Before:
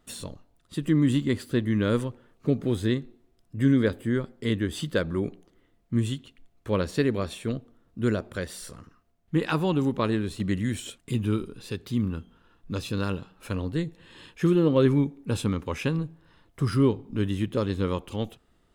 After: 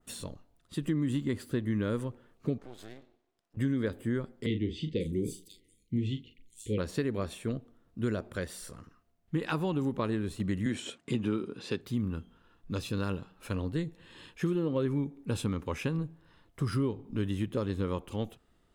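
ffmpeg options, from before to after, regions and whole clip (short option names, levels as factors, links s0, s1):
-filter_complex "[0:a]asettb=1/sr,asplit=3[s0][s1][s2];[s0]atrim=end=2.584[s3];[s1]atrim=start=2.58:end=3.57,asetpts=PTS-STARTPTS,afade=t=in:d=0.004:c=qsin,afade=t=out:st=0.986:d=0.004:c=qsin,acompressor=threshold=0.0355:ratio=12:attack=3.2:release=140:knee=1:detection=peak,highpass=390,lowpass=7200,aeval=exprs='max(val(0),0)':c=same[s4];[s2]atrim=start=3.566[s5];[s3][s4]acrossfade=d=0.004:c1=hsin:c2=qsin[s6];[s6][s5]acrossfade=d=0.004:c1=qsin:c2=hsin,asettb=1/sr,asplit=3[s7][s8][s9];[s7]atrim=end=4.464[s10];[s8]atrim=start=4.46:end=6.78,asetpts=PTS-STARTPTS,afade=t=in:d=0.004:c=qsin,afade=t=out:st=2.316:d=0.004:c=qsin,asuperstop=centerf=1000:order=20:qfactor=0.68,asplit=2[s11][s12];[s12]adelay=38,volume=0.355[s13];[s11][s13]amix=inputs=2:normalize=0,atrim=end_sample=102312,acrossover=split=4900[s14][s15];[s15]adelay=540[s16];[s14][s16]amix=inputs=2:normalize=0,atrim=end_sample=102312[s17];[s9]atrim=start=6.776[s18];[s10][s17]acrossfade=d=0.004:c1=hsin:c2=qsin[s19];[s19][s18]acrossfade=d=0.004:c1=qsin:c2=hsin,asettb=1/sr,asplit=3[s20][s21][s22];[s20]atrim=end=10.664[s23];[s21]atrim=start=10.66:end=11.81,asetpts=PTS-STARTPTS,afade=t=in:d=0.004:c=qsin,afade=t=out:st=1.146:d=0.004:c=qsin,highpass=180,lowpass=5700,acontrast=54[s24];[s22]atrim=start=11.806[s25];[s23][s24]acrossfade=d=0.004:c1=hsin:c2=qsin[s26];[s26][s25]acrossfade=d=0.004:c1=qsin:c2=hsin,adynamicequalizer=threshold=0.00355:dfrequency=3900:dqfactor=0.85:tfrequency=3900:tqfactor=0.85:attack=5:release=100:ratio=0.375:range=2.5:mode=cutabove:tftype=bell,acompressor=threshold=0.0708:ratio=6,volume=0.708"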